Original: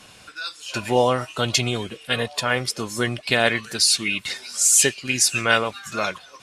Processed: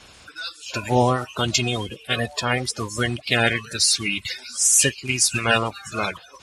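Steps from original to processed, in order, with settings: coarse spectral quantiser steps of 30 dB; peaking EQ 61 Hz +11.5 dB 1.4 oct

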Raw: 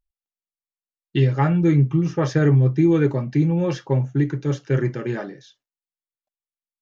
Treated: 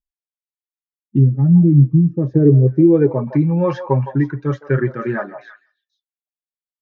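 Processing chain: expander on every frequency bin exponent 1.5; in parallel at +1.5 dB: compression, threshold -24 dBFS, peak gain reduction 10.5 dB; on the sum: treble shelf 5 kHz +7 dB; low-pass sweep 230 Hz -> 1.2 kHz, 2.06–3.44 s; treble shelf 2.3 kHz +11.5 dB; on a send: repeats whose band climbs or falls 162 ms, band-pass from 760 Hz, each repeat 1.4 oct, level -8 dB; on the sum: trim +1 dB

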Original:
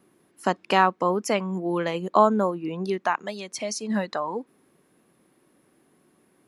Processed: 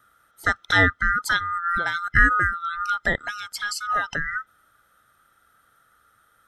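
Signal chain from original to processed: split-band scrambler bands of 1 kHz; trim +1.5 dB

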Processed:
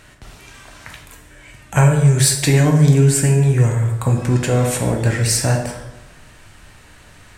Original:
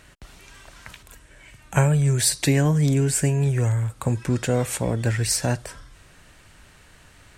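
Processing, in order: in parallel at -8 dB: hard clipper -16.5 dBFS, distortion -14 dB; on the sum: plate-style reverb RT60 1.1 s, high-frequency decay 0.6×, DRR 1.5 dB; trim +1 dB

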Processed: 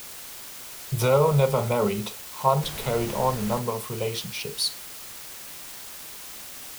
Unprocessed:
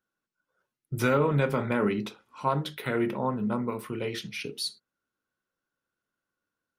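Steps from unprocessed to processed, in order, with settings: static phaser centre 700 Hz, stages 4; 2.61–3.58 s: added noise pink -46 dBFS; word length cut 8-bit, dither triangular; trim +8 dB

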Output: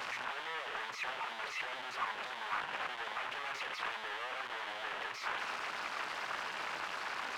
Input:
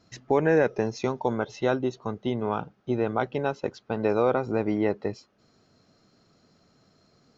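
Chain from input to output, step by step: one-bit comparator; two resonant band-passes 1.6 kHz, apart 0.75 oct; loudspeaker Doppler distortion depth 0.77 ms; trim +1 dB

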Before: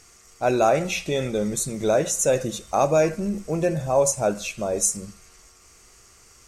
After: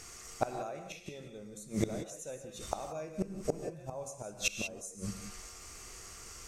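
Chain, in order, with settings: inverted gate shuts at -19 dBFS, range -26 dB; gated-style reverb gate 210 ms rising, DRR 6.5 dB; trim +2.5 dB

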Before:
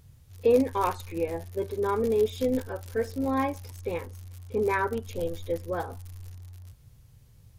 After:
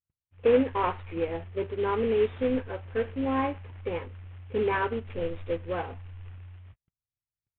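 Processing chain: CVSD coder 16 kbps; gate -46 dBFS, range -46 dB

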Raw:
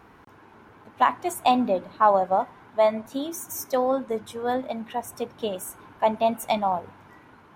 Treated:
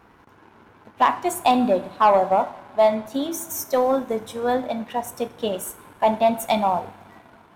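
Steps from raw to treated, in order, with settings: two-slope reverb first 0.54 s, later 4.1 s, from -21 dB, DRR 10.5 dB; waveshaping leveller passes 1

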